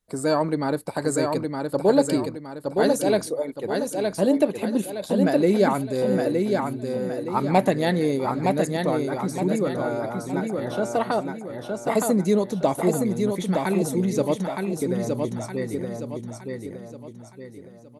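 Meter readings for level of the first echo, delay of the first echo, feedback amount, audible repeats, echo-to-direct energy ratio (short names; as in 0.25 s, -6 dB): -4.0 dB, 0.916 s, 41%, 5, -3.0 dB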